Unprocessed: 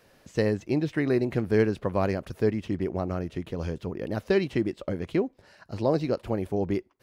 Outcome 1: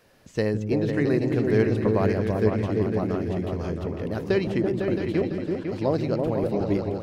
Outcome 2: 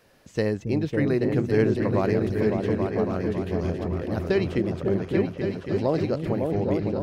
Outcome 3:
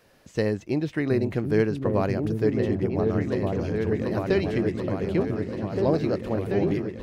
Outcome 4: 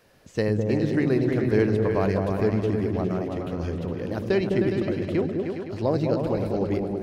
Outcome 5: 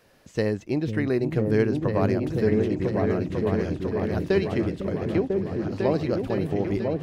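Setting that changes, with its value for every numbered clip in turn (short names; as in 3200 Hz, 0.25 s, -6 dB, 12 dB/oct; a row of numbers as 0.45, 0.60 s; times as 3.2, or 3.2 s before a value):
repeats that get brighter, time: 0.167, 0.277, 0.735, 0.103, 0.499 s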